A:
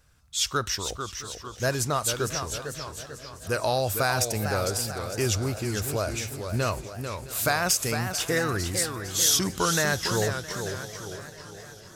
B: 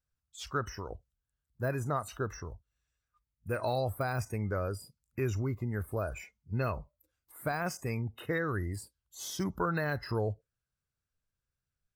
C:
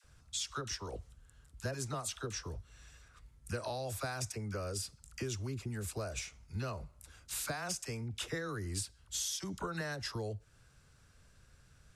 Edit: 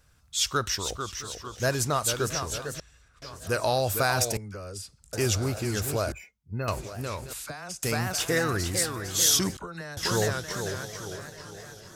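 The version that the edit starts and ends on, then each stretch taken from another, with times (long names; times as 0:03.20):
A
0:02.80–0:03.22: punch in from C
0:04.37–0:05.13: punch in from C
0:06.12–0:06.68: punch in from B
0:07.33–0:07.83: punch in from C
0:09.57–0:09.97: punch in from C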